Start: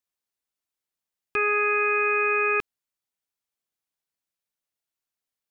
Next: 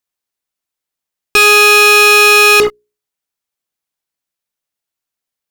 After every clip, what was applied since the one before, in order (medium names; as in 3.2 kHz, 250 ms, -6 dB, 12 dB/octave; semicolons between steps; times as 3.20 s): hum notches 60/120/180/240/300/360/420 Hz; in parallel at -0.5 dB: fuzz box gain 48 dB, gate -46 dBFS; on the sum: trim +5.5 dB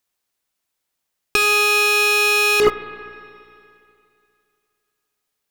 compressor with a negative ratio -14 dBFS, ratio -1; spring tank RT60 2.6 s, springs 34/49 ms, chirp 60 ms, DRR 12 dB; trim -2 dB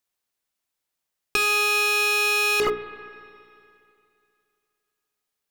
hum notches 60/120/180/240/300/360/420 Hz; trim -5 dB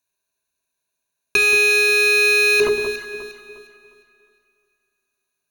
rippled EQ curve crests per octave 1.5, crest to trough 15 dB; echo whose repeats swap between lows and highs 178 ms, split 1.3 kHz, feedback 57%, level -6 dB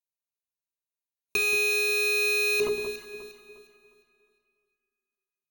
spectral noise reduction 12 dB; graphic EQ with 31 bands 200 Hz +8 dB, 1.6 kHz -11 dB, 8 kHz +6 dB, 16 kHz +9 dB; trim -9 dB